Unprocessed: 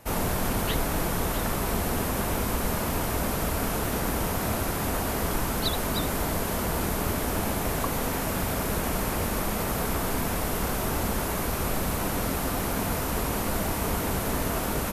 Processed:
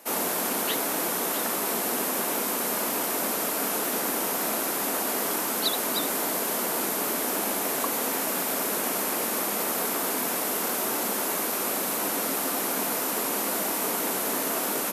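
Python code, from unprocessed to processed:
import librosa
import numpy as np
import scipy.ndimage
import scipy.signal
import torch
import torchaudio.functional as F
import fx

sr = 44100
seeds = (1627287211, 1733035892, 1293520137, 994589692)

y = scipy.signal.sosfilt(scipy.signal.butter(4, 240.0, 'highpass', fs=sr, output='sos'), x)
y = fx.high_shelf(y, sr, hz=4700.0, db=7.0)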